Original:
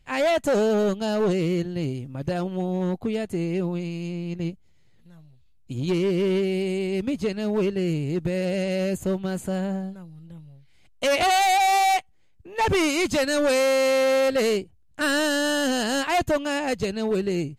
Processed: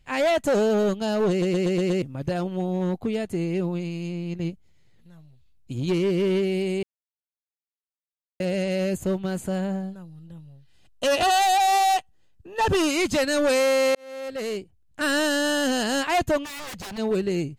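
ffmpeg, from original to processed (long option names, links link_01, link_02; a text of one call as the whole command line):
ffmpeg -i in.wav -filter_complex "[0:a]asettb=1/sr,asplit=3[link_01][link_02][link_03];[link_01]atrim=end=9.944[link_04];[link_02]atrim=start=9.94:end=12.91,asetpts=PTS-STARTPTS,afade=type=in:duration=0.004:curve=qsin,afade=type=out:start_time=2.966:duration=0.004:curve=qsin,asuperstop=centerf=2200:order=4:qfactor=6[link_05];[link_03]atrim=start=12.906[link_06];[link_04][link_05]acrossfade=duration=0.004:curve1=hsin:curve2=qsin[link_07];[link_07][link_06]acrossfade=duration=0.004:curve1=qsin:curve2=hsin,asplit=3[link_08][link_09][link_10];[link_08]afade=type=out:start_time=16.43:duration=0.02[link_11];[link_09]aeval=exprs='0.0282*(abs(mod(val(0)/0.0282+3,4)-2)-1)':channel_layout=same,afade=type=in:start_time=16.43:duration=0.02,afade=type=out:start_time=16.97:duration=0.02[link_12];[link_10]afade=type=in:start_time=16.97:duration=0.02[link_13];[link_11][link_12][link_13]amix=inputs=3:normalize=0,asplit=10[link_14][link_15][link_16][link_17][link_18][link_19][link_20][link_21][link_22][link_23];[link_14]atrim=end=1.422[link_24];[link_15]atrim=start=1.298:end=1.422[link_25];[link_16]atrim=start=1.298:end=1.422[link_26];[link_17]atrim=start=1.298:end=1.422[link_27];[link_18]atrim=start=1.298:end=1.422[link_28];[link_19]atrim=start=1.298:end=1.422[link_29];[link_20]atrim=start=2.018:end=6.83,asetpts=PTS-STARTPTS,afade=type=out:start_time=4.808:duration=0.004:curve=hsin[link_30];[link_21]atrim=start=6.83:end=8.4,asetpts=PTS-STARTPTS,volume=0[link_31];[link_22]atrim=start=8.4:end=13.95,asetpts=PTS-STARTPTS,afade=type=in:duration=0.004:curve=hsin,afade=type=out:start_time=5.546:duration=0.004:curve=hsin[link_32];[link_23]atrim=start=13.95,asetpts=PTS-STARTPTS,afade=type=in:duration=1.23[link_33];[link_24][link_25]acrossfade=duration=0.004:curve1=hsin:curve2=hsin[link_34];[link_34][link_26]acrossfade=duration=0.004:curve1=hsin:curve2=hsin[link_35];[link_35][link_27]acrossfade=duration=0.004:curve1=hsin:curve2=hsin[link_36];[link_36][link_28]acrossfade=duration=0.004:curve1=hsin:curve2=hsin[link_37];[link_37][link_29]acrossfade=duration=0.004:curve1=hsin:curve2=hsin[link_38];[link_30][link_31][link_32][link_33]concat=n=4:v=0:a=1[link_39];[link_38][link_39]acrossfade=duration=0.004:curve1=hsin:curve2=hsin" out.wav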